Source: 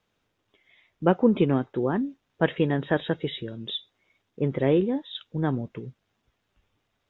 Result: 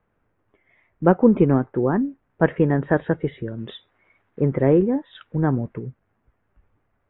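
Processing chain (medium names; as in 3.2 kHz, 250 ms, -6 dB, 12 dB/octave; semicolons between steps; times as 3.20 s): block-companded coder 7-bit; low-pass 1.9 kHz 24 dB/octave; bass shelf 70 Hz +8.5 dB; 3.58–5.74 s: tape noise reduction on one side only encoder only; trim +4.5 dB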